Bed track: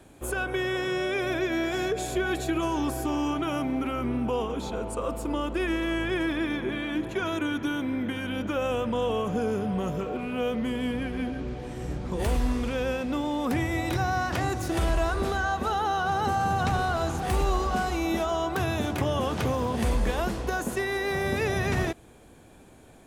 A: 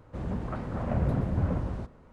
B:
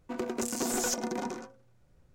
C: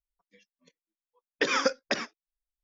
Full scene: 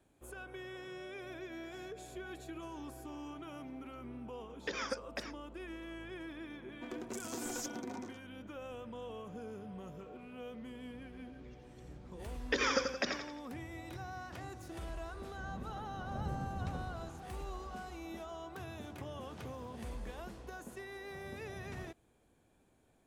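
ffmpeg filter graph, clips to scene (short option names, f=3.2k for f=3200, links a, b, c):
-filter_complex "[3:a]asplit=2[a][b];[0:a]volume=-18.5dB[c];[b]aecho=1:1:86|172|258|344|430:0.501|0.216|0.0927|0.0398|0.0171[d];[1:a]tiltshelf=f=970:g=3[e];[a]atrim=end=2.63,asetpts=PTS-STARTPTS,volume=-13dB,afade=t=in:d=0.004:c=hsin,afade=t=out:st=2.626:d=0.004:c=hsin,adelay=3260[f];[2:a]atrim=end=2.14,asetpts=PTS-STARTPTS,volume=-11dB,afade=t=in:d=0.004:c=hsin,afade=t=out:st=2.136:d=0.004:c=hsin,adelay=6720[g];[d]atrim=end=2.63,asetpts=PTS-STARTPTS,volume=-6.5dB,afade=t=in:d=0.004:c=hsin,afade=t=out:st=2.626:d=0.004:c=hsin,adelay=11110[h];[e]atrim=end=2.12,asetpts=PTS-STARTPTS,volume=-16dB,afade=t=in:d=0.004:c=hsin,afade=t=out:st=2.116:d=0.004:c=hsin,adelay=672084S[i];[c][f][g][h][i]amix=inputs=5:normalize=0"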